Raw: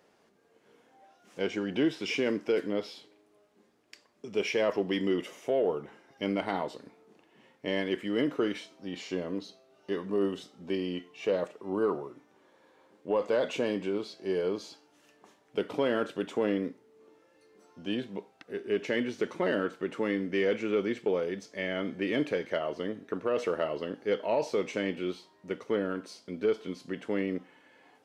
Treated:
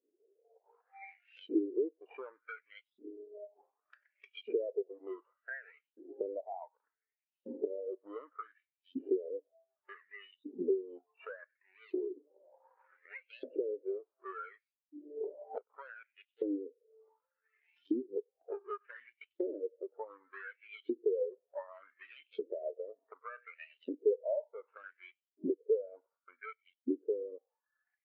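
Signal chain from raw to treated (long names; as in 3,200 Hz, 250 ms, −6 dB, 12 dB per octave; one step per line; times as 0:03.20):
running median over 41 samples
camcorder AGC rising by 20 dB per second
high-shelf EQ 4,900 Hz −5 dB
on a send: feedback echo with a high-pass in the loop 95 ms, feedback 60%, high-pass 420 Hz, level −19 dB
on the sum: auto-filter high-pass saw up 0.67 Hz 260–3,600 Hz
dynamic equaliser 210 Hz, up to −7 dB, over −46 dBFS, Q 1.9
in parallel at −10 dB: soft clipping −22 dBFS, distortion −14 dB
on the sum: downward compressor 20 to 1, threshold −40 dBFS, peak gain reduction 23.5 dB
every bin expanded away from the loudest bin 2.5 to 1
level +2.5 dB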